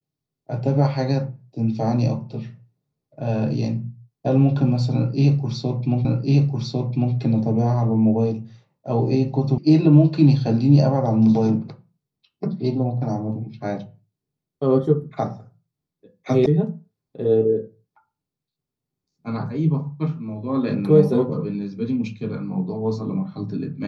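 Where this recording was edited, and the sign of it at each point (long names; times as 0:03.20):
0:06.05: the same again, the last 1.1 s
0:09.58: cut off before it has died away
0:16.46: cut off before it has died away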